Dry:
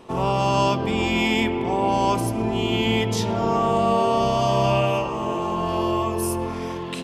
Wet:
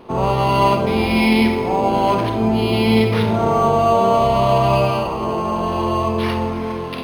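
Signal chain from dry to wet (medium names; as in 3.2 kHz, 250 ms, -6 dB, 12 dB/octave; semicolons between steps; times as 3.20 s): band-stop 1.8 kHz, Q 14; Schroeder reverb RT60 0.68 s, combs from 32 ms, DRR 5 dB; decimation joined by straight lines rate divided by 6×; trim +4.5 dB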